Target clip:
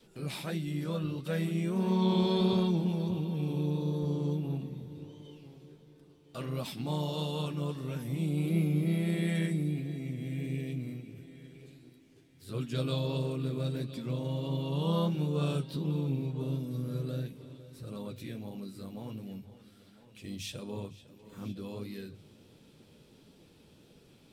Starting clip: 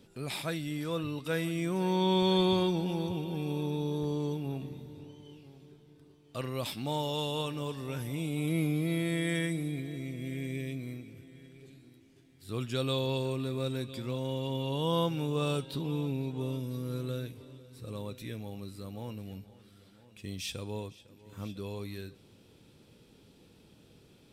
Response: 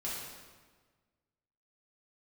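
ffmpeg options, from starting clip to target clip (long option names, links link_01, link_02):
-filter_complex "[0:a]adynamicequalizer=threshold=0.00562:dfrequency=160:dqfactor=0.86:tfrequency=160:tqfactor=0.86:attack=5:release=100:ratio=0.375:range=4:mode=boostabove:tftype=bell,bandreject=frequency=50:width_type=h:width=6,bandreject=frequency=100:width_type=h:width=6,asplit=2[link_01][link_02];[link_02]acompressor=threshold=-43dB:ratio=6,volume=0dB[link_03];[link_01][link_03]amix=inputs=2:normalize=0,flanger=delay=4.3:depth=9.7:regen=-35:speed=1.5:shape=sinusoidal,asplit=2[link_04][link_05];[link_05]asetrate=52444,aresample=44100,atempo=0.840896,volume=-10dB[link_06];[link_04][link_06]amix=inputs=2:normalize=0,volume=-2.5dB"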